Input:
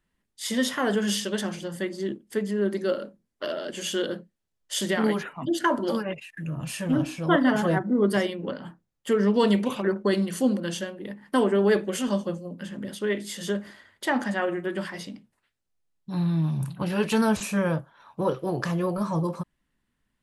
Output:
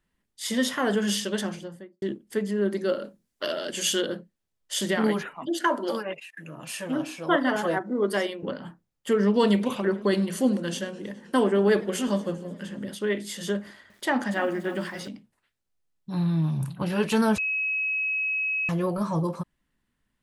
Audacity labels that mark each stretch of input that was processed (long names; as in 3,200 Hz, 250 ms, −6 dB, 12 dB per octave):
1.400000	2.020000	fade out and dull
3.040000	4.010000	high-shelf EQ 2,500 Hz +8.5 dB
5.360000	8.430000	high-pass filter 320 Hz
9.480000	12.850000	feedback echo with a swinging delay time 105 ms, feedback 79%, depth 158 cents, level −22.5 dB
13.610000	15.080000	feedback echo at a low word length 289 ms, feedback 35%, word length 8 bits, level −12 dB
17.380000	18.690000	beep over 2,560 Hz −24 dBFS